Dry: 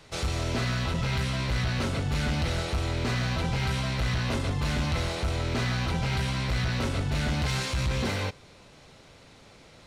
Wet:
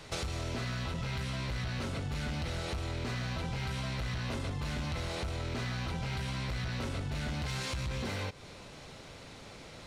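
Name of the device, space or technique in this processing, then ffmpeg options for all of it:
serial compression, leveller first: -af "acompressor=threshold=-29dB:ratio=6,acompressor=threshold=-38dB:ratio=4,volume=3.5dB"

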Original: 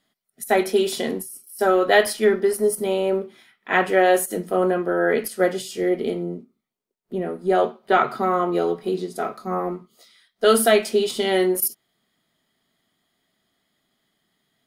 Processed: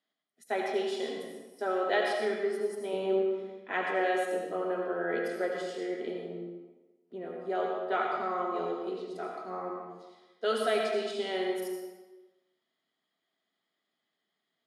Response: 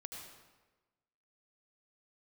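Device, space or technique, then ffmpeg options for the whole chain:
supermarket ceiling speaker: -filter_complex "[0:a]asettb=1/sr,asplit=3[a][b][c];[a]atrim=end=2.934[d];[b]atrim=start=2.93:end=3.72,asetpts=PTS-STARTPTS,afade=t=in:d=0.004:c=qsin,afade=t=out:st=0.786:d=0.004:c=qsin,lowshelf=f=420:g=11[e];[c]atrim=start=3.716[f];[d][e]acrossfade=d=0.004:c1=hsin:c2=qsin[g];[g][f]acrossfade=d=0.004:c1=qsin:c2=hsin,highpass=280,lowpass=5.6k[h];[1:a]atrim=start_sample=2205[i];[h][i]afir=irnorm=-1:irlink=0,volume=-7dB"

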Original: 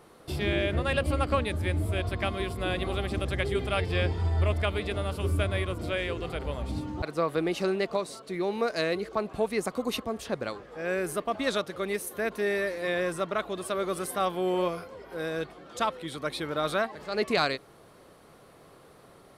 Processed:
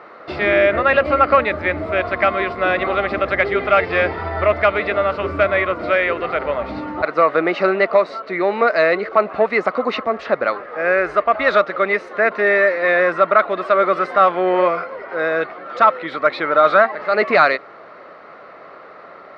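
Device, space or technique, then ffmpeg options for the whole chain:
overdrive pedal into a guitar cabinet: -filter_complex "[0:a]asplit=3[a][b][c];[a]afade=t=out:st=10.91:d=0.02[d];[b]asubboost=boost=11:cutoff=58,afade=t=in:st=10.91:d=0.02,afade=t=out:st=11.5:d=0.02[e];[c]afade=t=in:st=11.5:d=0.02[f];[d][e][f]amix=inputs=3:normalize=0,asplit=2[g][h];[h]highpass=f=720:p=1,volume=12dB,asoftclip=type=tanh:threshold=-12.5dB[i];[g][i]amix=inputs=2:normalize=0,lowpass=f=2.6k:p=1,volume=-6dB,highpass=84,equalizer=f=98:t=q:w=4:g=-8,equalizer=f=140:t=q:w=4:g=-6,equalizer=f=610:t=q:w=4:g=7,equalizer=f=1.3k:t=q:w=4:g=9,equalizer=f=2k:t=q:w=4:g=7,equalizer=f=3.3k:t=q:w=4:g=-8,lowpass=f=4.2k:w=0.5412,lowpass=f=4.2k:w=1.3066,volume=7dB"

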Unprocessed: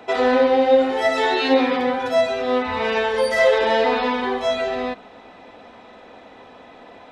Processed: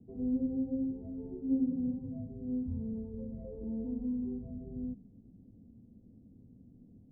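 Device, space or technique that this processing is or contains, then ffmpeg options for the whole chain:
the neighbour's flat through the wall: -af "lowpass=f=210:w=0.5412,lowpass=f=210:w=1.3066,equalizer=f=120:t=o:w=0.77:g=4.5"

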